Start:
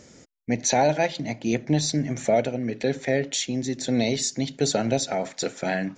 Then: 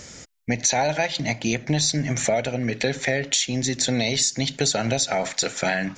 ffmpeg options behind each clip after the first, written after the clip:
-filter_complex "[0:a]equalizer=f=310:w=0.5:g=-10.5,asplit=2[a][b];[b]alimiter=limit=-20dB:level=0:latency=1:release=240,volume=-1.5dB[c];[a][c]amix=inputs=2:normalize=0,acompressor=threshold=-26dB:ratio=4,volume=7dB"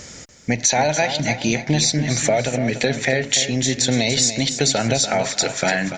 -af "aecho=1:1:290|580|870|1160:0.316|0.114|0.041|0.0148,volume=3.5dB"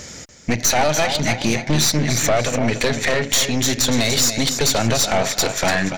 -af "aeval=exprs='(tanh(8.91*val(0)+0.7)-tanh(0.7))/8.91':c=same,volume=6.5dB"

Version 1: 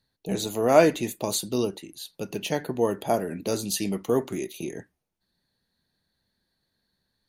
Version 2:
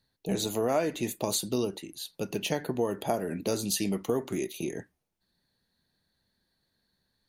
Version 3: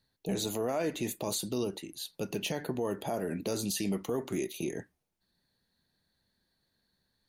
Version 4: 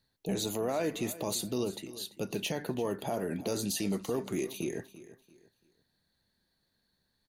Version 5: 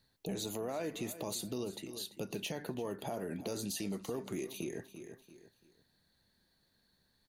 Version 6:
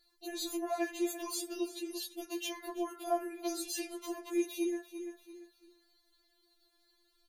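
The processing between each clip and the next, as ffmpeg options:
-af "acompressor=threshold=-24dB:ratio=6"
-af "alimiter=limit=-22dB:level=0:latency=1:release=26,volume=-1dB"
-af "aecho=1:1:340|680|1020:0.15|0.0464|0.0144"
-af "acompressor=threshold=-46dB:ratio=2,volume=3dB"
-af "afftfilt=real='re*4*eq(mod(b,16),0)':imag='im*4*eq(mod(b,16),0)':win_size=2048:overlap=0.75,volume=5dB"

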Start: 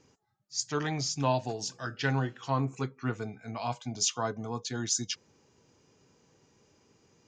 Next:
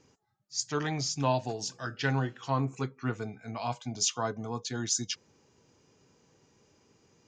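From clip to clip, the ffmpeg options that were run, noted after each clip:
-af anull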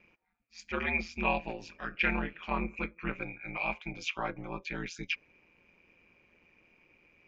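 -af "aeval=exprs='val(0)*sin(2*PI*85*n/s)':c=same,lowpass=f=2.4k:t=q:w=16,volume=-1.5dB"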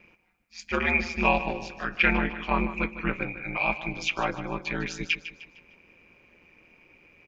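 -af "aecho=1:1:152|304|456|608:0.224|0.0963|0.0414|0.0178,volume=7dB"

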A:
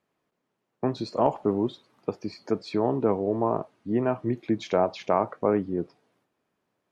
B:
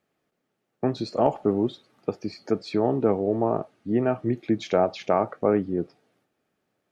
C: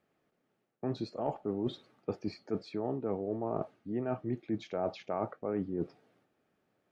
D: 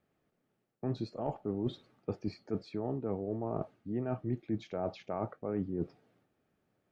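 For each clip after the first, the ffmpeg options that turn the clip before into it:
-af "bandreject=f=1k:w=5.3,volume=2dB"
-af "highshelf=f=4.3k:g=-9,areverse,acompressor=threshold=-31dB:ratio=6,areverse"
-af "lowshelf=f=140:g=11,volume=-3dB"

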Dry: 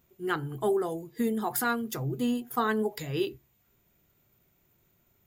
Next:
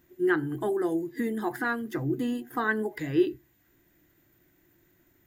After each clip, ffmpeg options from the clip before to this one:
-filter_complex "[0:a]asplit=2[a][b];[b]acompressor=threshold=-36dB:ratio=6,volume=-1dB[c];[a][c]amix=inputs=2:normalize=0,superequalizer=6b=3.55:11b=2.82,acrossover=split=2700[d][e];[e]acompressor=threshold=-43dB:ratio=4:attack=1:release=60[f];[d][f]amix=inputs=2:normalize=0,volume=-4dB"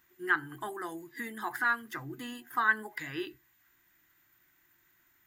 -af "lowshelf=f=750:t=q:w=1.5:g=-12.5"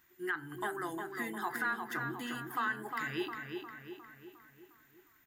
-filter_complex "[0:a]alimiter=level_in=0.5dB:limit=-24dB:level=0:latency=1:release=183,volume=-0.5dB,asplit=2[a][b];[b]adelay=356,lowpass=f=3.6k:p=1,volume=-5dB,asplit=2[c][d];[d]adelay=356,lowpass=f=3.6k:p=1,volume=0.54,asplit=2[e][f];[f]adelay=356,lowpass=f=3.6k:p=1,volume=0.54,asplit=2[g][h];[h]adelay=356,lowpass=f=3.6k:p=1,volume=0.54,asplit=2[i][j];[j]adelay=356,lowpass=f=3.6k:p=1,volume=0.54,asplit=2[k][l];[l]adelay=356,lowpass=f=3.6k:p=1,volume=0.54,asplit=2[m][n];[n]adelay=356,lowpass=f=3.6k:p=1,volume=0.54[o];[a][c][e][g][i][k][m][o]amix=inputs=8:normalize=0"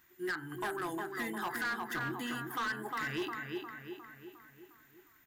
-af "volume=33.5dB,asoftclip=hard,volume=-33.5dB,volume=2dB"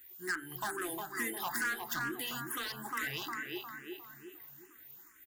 -filter_complex "[0:a]crystalizer=i=3:c=0,aecho=1:1:277:0.075,asplit=2[a][b];[b]afreqshift=2.3[c];[a][c]amix=inputs=2:normalize=1"

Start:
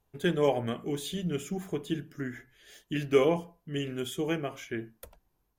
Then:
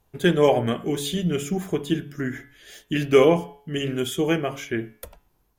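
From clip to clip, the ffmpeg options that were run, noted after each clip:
-af "bandreject=f=141.9:t=h:w=4,bandreject=f=283.8:t=h:w=4,bandreject=f=425.7:t=h:w=4,bandreject=f=567.6:t=h:w=4,bandreject=f=709.5:t=h:w=4,bandreject=f=851.4:t=h:w=4,bandreject=f=993.3:t=h:w=4,bandreject=f=1.1352k:t=h:w=4,bandreject=f=1.2771k:t=h:w=4,bandreject=f=1.419k:t=h:w=4,bandreject=f=1.5609k:t=h:w=4,bandreject=f=1.7028k:t=h:w=4,bandreject=f=1.8447k:t=h:w=4,bandreject=f=1.9866k:t=h:w=4,bandreject=f=2.1285k:t=h:w=4,bandreject=f=2.2704k:t=h:w=4,bandreject=f=2.4123k:t=h:w=4,bandreject=f=2.5542k:t=h:w=4,bandreject=f=2.6961k:t=h:w=4,bandreject=f=2.838k:t=h:w=4,bandreject=f=2.9799k:t=h:w=4,bandreject=f=3.1218k:t=h:w=4,bandreject=f=3.2637k:t=h:w=4,bandreject=f=3.4056k:t=h:w=4,bandreject=f=3.5475k:t=h:w=4,volume=8.5dB"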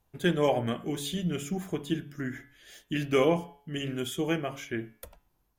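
-af "equalizer=f=420:w=5.8:g=-5,volume=-6dB"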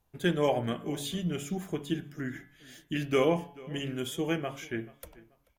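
-filter_complex "[0:a]asplit=2[a][b];[b]adelay=435,lowpass=f=3.9k:p=1,volume=-21.5dB,asplit=2[c][d];[d]adelay=435,lowpass=f=3.9k:p=1,volume=0.3[e];[a][c][e]amix=inputs=3:normalize=0,volume=-1.5dB"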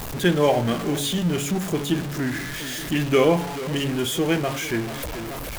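-af "aeval=exprs='val(0)+0.5*0.0237*sgn(val(0))':c=same,volume=6.5dB"

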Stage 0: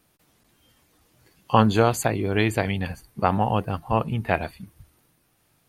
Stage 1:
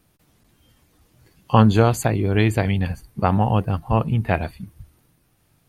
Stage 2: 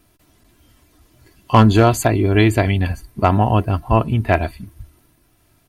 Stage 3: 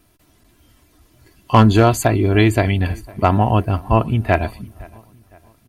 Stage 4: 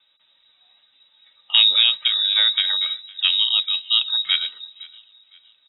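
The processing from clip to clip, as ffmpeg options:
-af "lowshelf=f=210:g=9"
-af "aecho=1:1:3:0.5,volume=7dB,asoftclip=hard,volume=-7dB,volume=4dB"
-filter_complex "[0:a]asplit=2[a][b];[b]adelay=511,lowpass=f=3.2k:p=1,volume=-24dB,asplit=2[c][d];[d]adelay=511,lowpass=f=3.2k:p=1,volume=0.45,asplit=2[e][f];[f]adelay=511,lowpass=f=3.2k:p=1,volume=0.45[g];[a][c][e][g]amix=inputs=4:normalize=0"
-filter_complex "[0:a]acrossover=split=3000[a][b];[b]acompressor=threshold=-43dB:ratio=4:attack=1:release=60[c];[a][c]amix=inputs=2:normalize=0,lowpass=f=3.3k:t=q:w=0.5098,lowpass=f=3.3k:t=q:w=0.6013,lowpass=f=3.3k:t=q:w=0.9,lowpass=f=3.3k:t=q:w=2.563,afreqshift=-3900,volume=-4.5dB"

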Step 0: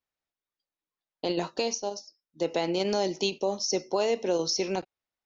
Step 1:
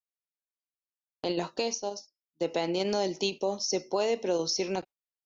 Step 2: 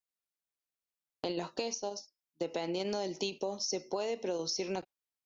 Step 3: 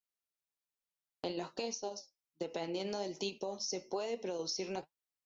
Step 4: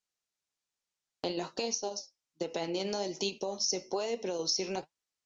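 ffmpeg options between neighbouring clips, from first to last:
-af "agate=range=-19dB:threshold=-43dB:ratio=16:detection=peak,volume=-1.5dB"
-af "acompressor=threshold=-32dB:ratio=4"
-af "flanger=delay=3.8:depth=7.8:regen=63:speed=1.2:shape=triangular,volume=1dB"
-af "lowpass=f=6.7k:t=q:w=1.6,volume=4dB"

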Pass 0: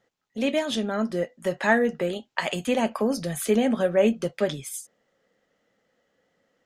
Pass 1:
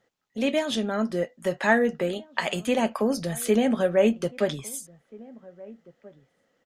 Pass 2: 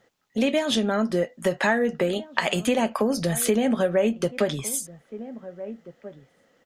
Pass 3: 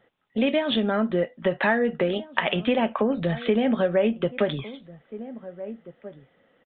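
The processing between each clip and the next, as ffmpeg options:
-filter_complex "[0:a]asplit=2[a][b];[b]adelay=1633,volume=-22dB,highshelf=f=4k:g=-36.7[c];[a][c]amix=inputs=2:normalize=0"
-af "acompressor=threshold=-27dB:ratio=4,volume=7.5dB"
-af "aresample=8000,aresample=44100"

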